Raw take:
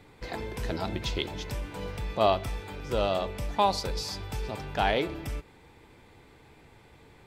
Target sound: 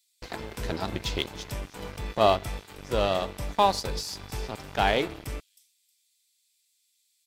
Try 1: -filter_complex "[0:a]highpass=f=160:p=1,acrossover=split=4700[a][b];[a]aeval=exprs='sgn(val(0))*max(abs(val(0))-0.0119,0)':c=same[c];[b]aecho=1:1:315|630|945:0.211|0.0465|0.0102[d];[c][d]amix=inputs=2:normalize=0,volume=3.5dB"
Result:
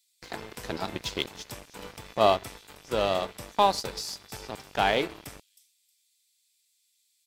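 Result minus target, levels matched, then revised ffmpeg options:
125 Hz band -7.0 dB
-filter_complex "[0:a]acrossover=split=4700[a][b];[a]aeval=exprs='sgn(val(0))*max(abs(val(0))-0.0119,0)':c=same[c];[b]aecho=1:1:315|630|945:0.211|0.0465|0.0102[d];[c][d]amix=inputs=2:normalize=0,volume=3.5dB"

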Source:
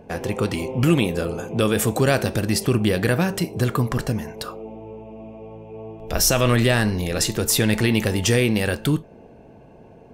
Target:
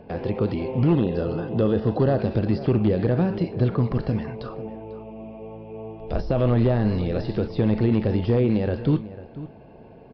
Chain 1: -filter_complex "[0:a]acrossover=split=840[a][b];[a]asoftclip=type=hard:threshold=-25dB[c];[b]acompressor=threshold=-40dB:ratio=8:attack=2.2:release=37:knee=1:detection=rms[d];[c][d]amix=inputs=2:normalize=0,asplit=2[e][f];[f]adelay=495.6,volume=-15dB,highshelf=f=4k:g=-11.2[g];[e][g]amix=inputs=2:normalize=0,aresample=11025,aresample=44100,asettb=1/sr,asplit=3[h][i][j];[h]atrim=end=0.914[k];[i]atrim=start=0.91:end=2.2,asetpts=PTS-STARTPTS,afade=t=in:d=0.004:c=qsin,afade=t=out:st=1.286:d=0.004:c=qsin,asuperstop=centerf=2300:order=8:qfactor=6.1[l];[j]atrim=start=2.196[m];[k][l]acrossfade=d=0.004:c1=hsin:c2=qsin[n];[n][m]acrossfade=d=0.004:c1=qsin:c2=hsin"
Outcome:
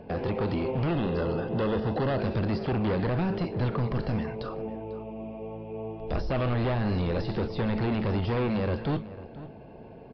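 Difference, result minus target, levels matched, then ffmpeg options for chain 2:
hard clip: distortion +15 dB
-filter_complex "[0:a]acrossover=split=840[a][b];[a]asoftclip=type=hard:threshold=-13.5dB[c];[b]acompressor=threshold=-40dB:ratio=8:attack=2.2:release=37:knee=1:detection=rms[d];[c][d]amix=inputs=2:normalize=0,asplit=2[e][f];[f]adelay=495.6,volume=-15dB,highshelf=f=4k:g=-11.2[g];[e][g]amix=inputs=2:normalize=0,aresample=11025,aresample=44100,asettb=1/sr,asplit=3[h][i][j];[h]atrim=end=0.914[k];[i]atrim=start=0.91:end=2.2,asetpts=PTS-STARTPTS,afade=t=in:d=0.004:c=qsin,afade=t=out:st=1.286:d=0.004:c=qsin,asuperstop=centerf=2300:order=8:qfactor=6.1[l];[j]atrim=start=2.196[m];[k][l]acrossfade=d=0.004:c1=hsin:c2=qsin[n];[n][m]acrossfade=d=0.004:c1=qsin:c2=hsin"

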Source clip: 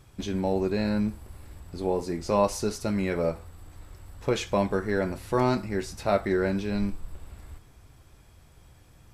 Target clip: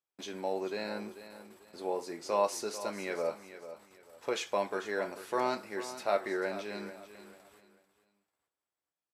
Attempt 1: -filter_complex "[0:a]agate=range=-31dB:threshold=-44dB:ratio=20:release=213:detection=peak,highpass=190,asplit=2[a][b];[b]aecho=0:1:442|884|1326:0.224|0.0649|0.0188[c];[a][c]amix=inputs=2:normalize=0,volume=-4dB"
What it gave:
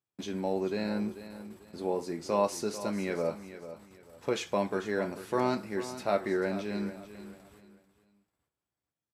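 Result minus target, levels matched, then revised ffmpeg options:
250 Hz band +6.0 dB
-filter_complex "[0:a]agate=range=-31dB:threshold=-44dB:ratio=20:release=213:detection=peak,highpass=450,asplit=2[a][b];[b]aecho=0:1:442|884|1326:0.224|0.0649|0.0188[c];[a][c]amix=inputs=2:normalize=0,volume=-4dB"

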